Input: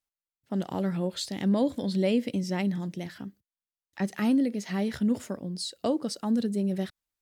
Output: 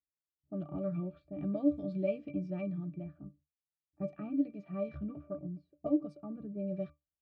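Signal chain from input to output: pitch-class resonator D, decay 0.18 s; level-controlled noise filter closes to 380 Hz, open at -36 dBFS; time-frequency box 5.77–6.31 s, 1.1–8.6 kHz -6 dB; trim +6 dB

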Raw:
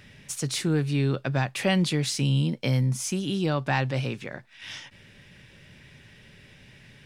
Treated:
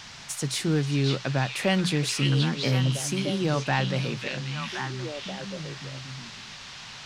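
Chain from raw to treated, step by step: hum notches 60/120/180 Hz; band noise 680–6000 Hz -45 dBFS; repeats whose band climbs or falls 534 ms, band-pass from 3.3 kHz, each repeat -1.4 oct, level 0 dB

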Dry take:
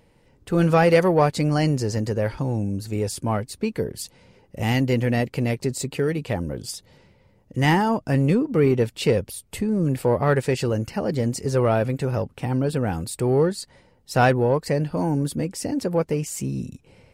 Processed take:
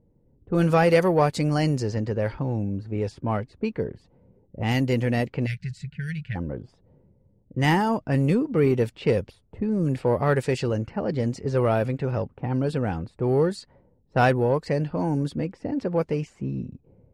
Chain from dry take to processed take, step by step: level-controlled noise filter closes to 370 Hz, open at -16.5 dBFS; time-frequency box 5.46–6.36 s, 210–1400 Hz -28 dB; trim -2 dB

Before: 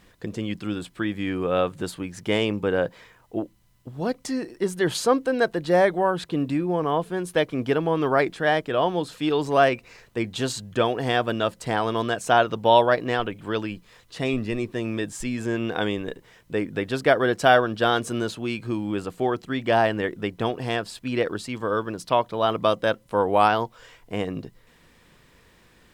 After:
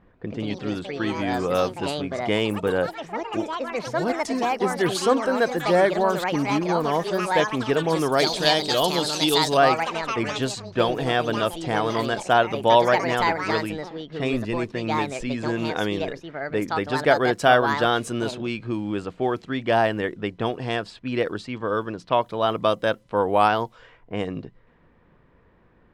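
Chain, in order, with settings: ever faster or slower copies 143 ms, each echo +5 st, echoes 3, each echo -6 dB; 8.12–9.57 s: resonant high shelf 2.7 kHz +11 dB, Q 1.5; level-controlled noise filter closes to 1.2 kHz, open at -20 dBFS

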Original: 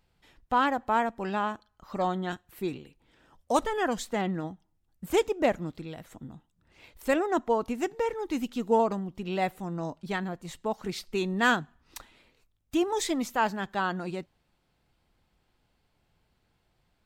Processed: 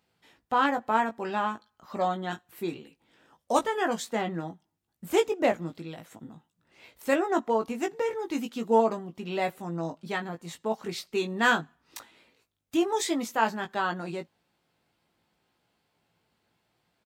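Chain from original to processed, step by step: Bessel high-pass 170 Hz, order 2; doubling 18 ms -5.5 dB

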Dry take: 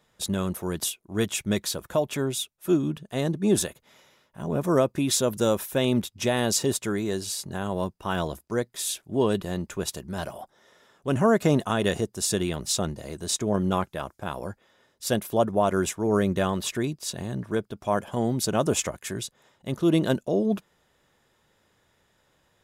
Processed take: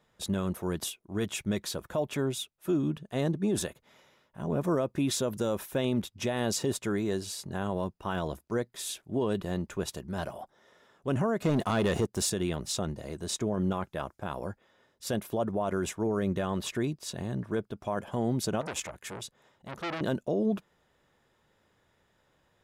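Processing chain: treble shelf 3.9 kHz -7 dB; 11.45–12.30 s: waveshaping leveller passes 2; peak limiter -18 dBFS, peak gain reduction 7.5 dB; 18.61–20.01 s: transformer saturation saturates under 1.9 kHz; trim -2 dB

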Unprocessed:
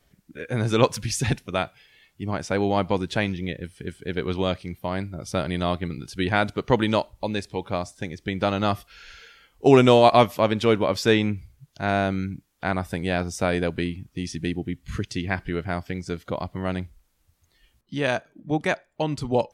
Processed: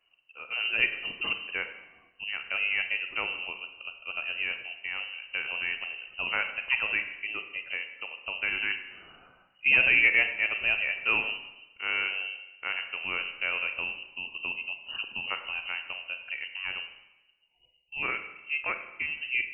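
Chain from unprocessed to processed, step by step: spectral selection erased 16.89–18.02 s, 910–1900 Hz; frequency inversion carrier 2.9 kHz; Schroeder reverb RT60 0.99 s, combs from 33 ms, DRR 7.5 dB; trim -8 dB

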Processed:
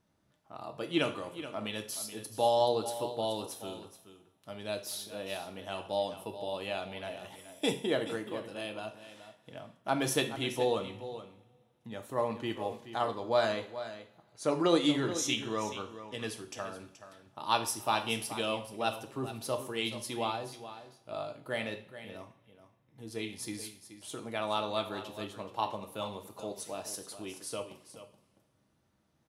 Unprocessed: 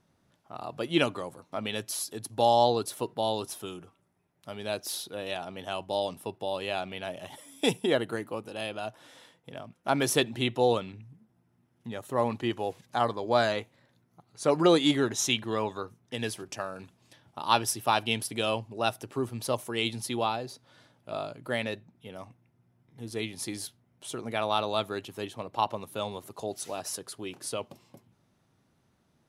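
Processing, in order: 14.43–16.50 s: low-pass 12 kHz 12 dB/octave; delay 427 ms -12.5 dB; reverberation, pre-delay 3 ms, DRR 5.5 dB; trim -5.5 dB

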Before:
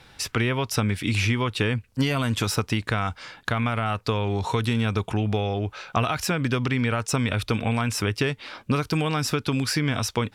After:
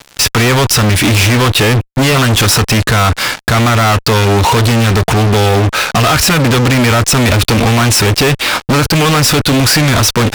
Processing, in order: reverse; upward compressor, threshold -37 dBFS; reverse; fuzz box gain 41 dB, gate -44 dBFS; trim +5 dB

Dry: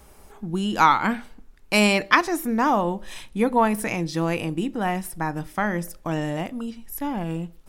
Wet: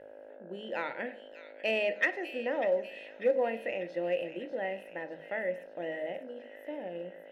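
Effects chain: mains buzz 50 Hz, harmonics 32, -38 dBFS -4 dB/octave; vowel filter e; peaking EQ 6.3 kHz -9.5 dB 1.8 oct; hum notches 50/100/150/200 Hz; on a send: feedback echo behind a high-pass 625 ms, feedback 56%, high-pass 2.5 kHz, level -8 dB; on the sum: reverberation RT60 0.55 s, pre-delay 20 ms, DRR 13 dB; in parallel at -8.5 dB: overload inside the chain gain 25 dB; on the sum: tape speed +5%

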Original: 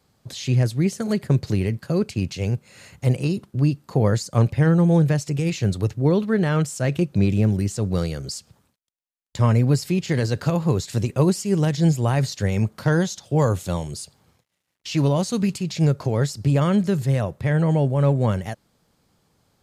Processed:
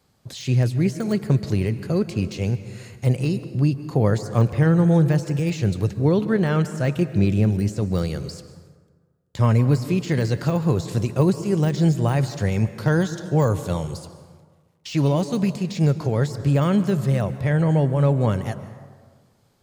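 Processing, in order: de-esser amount 80%; plate-style reverb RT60 1.6 s, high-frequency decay 0.5×, pre-delay 120 ms, DRR 12.5 dB

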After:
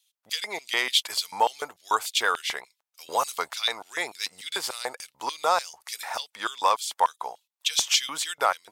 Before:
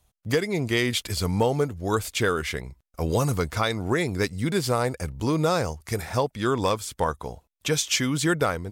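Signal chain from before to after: LFO high-pass square 3.4 Hz 860–3400 Hz; wow and flutter 25 cents

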